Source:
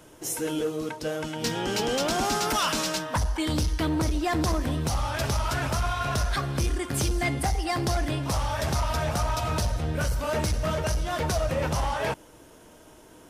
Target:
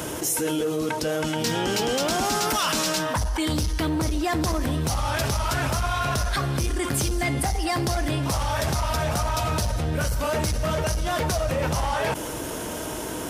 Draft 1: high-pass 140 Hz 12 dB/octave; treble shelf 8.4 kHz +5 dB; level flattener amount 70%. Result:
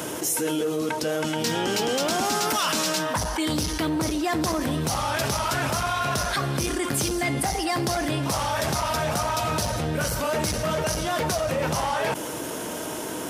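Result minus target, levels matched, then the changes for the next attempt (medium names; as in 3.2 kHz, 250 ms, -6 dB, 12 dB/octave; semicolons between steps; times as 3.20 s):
125 Hz band -3.5 dB
change: high-pass 40 Hz 12 dB/octave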